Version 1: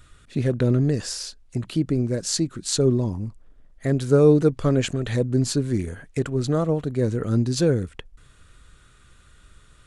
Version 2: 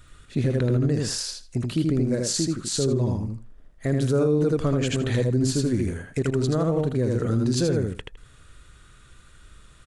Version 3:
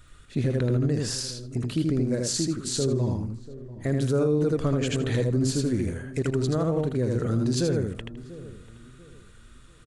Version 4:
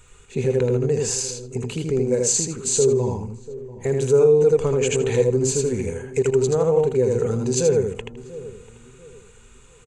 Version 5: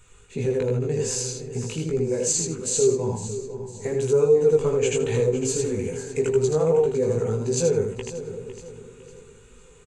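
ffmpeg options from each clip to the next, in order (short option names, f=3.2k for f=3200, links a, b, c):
-filter_complex "[0:a]asplit=2[a][b];[b]aecho=0:1:80|160|240:0.708|0.113|0.0181[c];[a][c]amix=inputs=2:normalize=0,alimiter=limit=-14dB:level=0:latency=1:release=71"
-filter_complex "[0:a]asplit=2[a][b];[b]adelay=690,lowpass=f=930:p=1,volume=-16dB,asplit=2[c][d];[d]adelay=690,lowpass=f=930:p=1,volume=0.34,asplit=2[e][f];[f]adelay=690,lowpass=f=930:p=1,volume=0.34[g];[a][c][e][g]amix=inputs=4:normalize=0,volume=-2dB"
-af "superequalizer=6b=0.501:7b=3.55:9b=2.82:12b=2.24:15b=3.55"
-af "flanger=delay=17:depth=2.6:speed=2.5,aecho=1:1:505|1010|1515|2020:0.224|0.0873|0.0341|0.0133"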